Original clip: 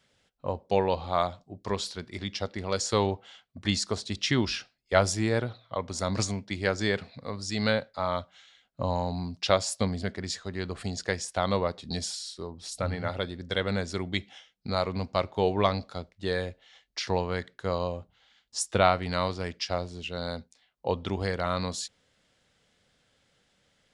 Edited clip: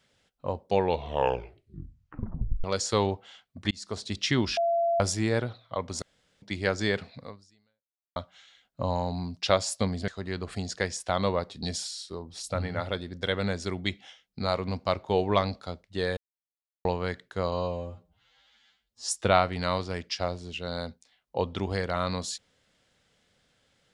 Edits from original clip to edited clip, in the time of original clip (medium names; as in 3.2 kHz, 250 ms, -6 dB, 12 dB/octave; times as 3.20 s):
0.80 s: tape stop 1.84 s
3.71–4.07 s: fade in
4.57–5.00 s: bleep 680 Hz -22 dBFS
6.02–6.42 s: room tone
7.23–8.16 s: fade out exponential
10.08–10.36 s: delete
16.45–17.13 s: mute
17.80–18.58 s: stretch 2×